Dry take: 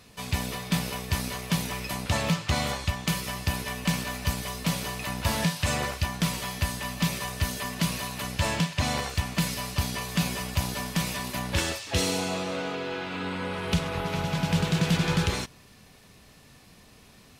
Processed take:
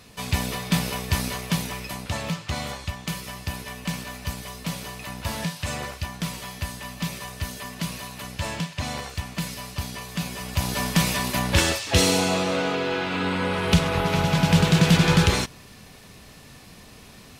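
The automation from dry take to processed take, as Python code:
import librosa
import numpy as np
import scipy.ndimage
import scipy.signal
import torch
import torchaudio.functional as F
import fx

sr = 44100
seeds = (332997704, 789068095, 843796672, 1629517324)

y = fx.gain(x, sr, db=fx.line((1.27, 4.0), (2.17, -3.0), (10.31, -3.0), (10.84, 7.0)))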